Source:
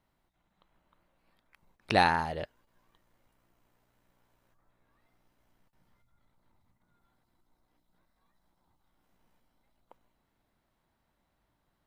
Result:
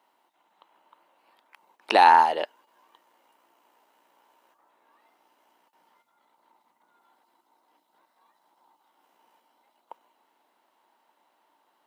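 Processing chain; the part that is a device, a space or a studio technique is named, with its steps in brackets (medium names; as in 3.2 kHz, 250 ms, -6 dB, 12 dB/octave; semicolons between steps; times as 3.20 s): laptop speaker (high-pass 300 Hz 24 dB/octave; peaking EQ 910 Hz +10 dB 0.51 oct; peaking EQ 2.9 kHz +6.5 dB 0.21 oct; peak limiter -13 dBFS, peak gain reduction 7 dB); trim +7 dB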